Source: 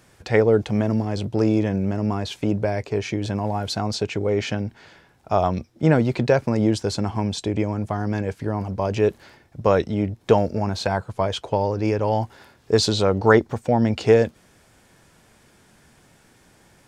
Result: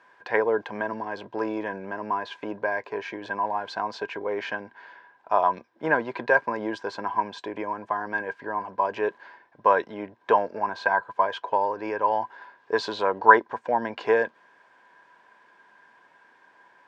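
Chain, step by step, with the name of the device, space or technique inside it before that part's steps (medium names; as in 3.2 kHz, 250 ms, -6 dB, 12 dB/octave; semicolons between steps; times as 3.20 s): tin-can telephone (band-pass 430–2900 Hz; small resonant body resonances 1/1.6 kHz, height 18 dB, ringing for 45 ms); trim -4 dB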